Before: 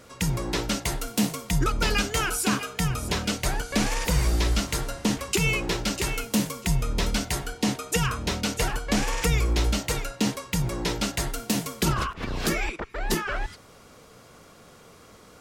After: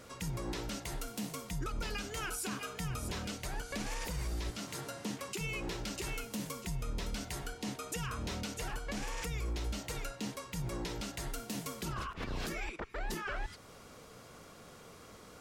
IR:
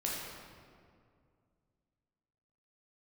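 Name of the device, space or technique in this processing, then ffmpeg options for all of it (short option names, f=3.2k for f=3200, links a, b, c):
stacked limiters: -filter_complex "[0:a]alimiter=limit=-15dB:level=0:latency=1:release=373,alimiter=limit=-20.5dB:level=0:latency=1:release=144,alimiter=level_in=2dB:limit=-24dB:level=0:latency=1:release=246,volume=-2dB,asettb=1/sr,asplit=3[a][b][c];[a]atrim=end=4.504[d];[b]atrim=start=4.5:end=5.41,asetpts=PTS-STARTPTS,afade=t=in:d=0.004:c=qsin,afade=t=out:st=0.906:d=0.004:c=qsin,highpass=f=110:w=0.5412,highpass=f=110:w=1.3066[e];[c]atrim=start=5.406[f];[d][e]acrossfade=d=0.004:c1=hsin:c2=qsin[g];[g][f]acrossfade=d=0.004:c1=qsin:c2=hsin,volume=-3dB"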